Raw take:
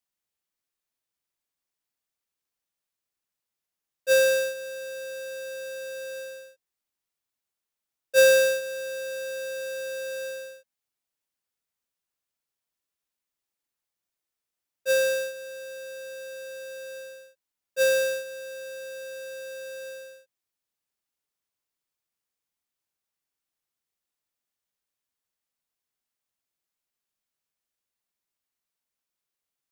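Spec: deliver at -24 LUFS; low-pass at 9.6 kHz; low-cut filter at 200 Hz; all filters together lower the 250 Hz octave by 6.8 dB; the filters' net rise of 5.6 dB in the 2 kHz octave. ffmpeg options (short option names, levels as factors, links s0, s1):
-af "highpass=200,lowpass=9600,equalizer=f=250:t=o:g=-6.5,equalizer=f=2000:t=o:g=8.5,volume=1.19"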